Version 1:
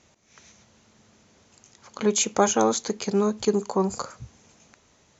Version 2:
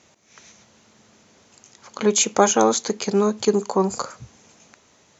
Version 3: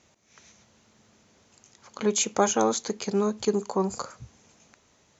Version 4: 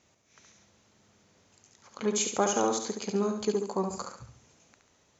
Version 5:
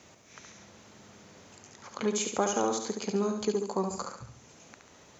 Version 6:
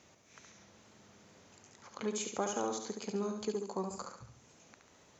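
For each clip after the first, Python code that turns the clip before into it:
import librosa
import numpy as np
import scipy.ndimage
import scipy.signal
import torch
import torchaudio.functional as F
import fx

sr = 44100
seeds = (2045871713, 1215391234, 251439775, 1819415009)

y1 = fx.highpass(x, sr, hz=160.0, slope=6)
y1 = y1 * 10.0 ** (4.5 / 20.0)
y2 = fx.low_shelf(y1, sr, hz=70.0, db=12.0)
y2 = y2 * 10.0 ** (-6.5 / 20.0)
y3 = fx.echo_feedback(y2, sr, ms=70, feedback_pct=41, wet_db=-6)
y3 = y3 * 10.0 ** (-4.5 / 20.0)
y4 = fx.band_squash(y3, sr, depth_pct=40)
y5 = fx.wow_flutter(y4, sr, seeds[0], rate_hz=2.1, depth_cents=22.0)
y5 = y5 * 10.0 ** (-7.0 / 20.0)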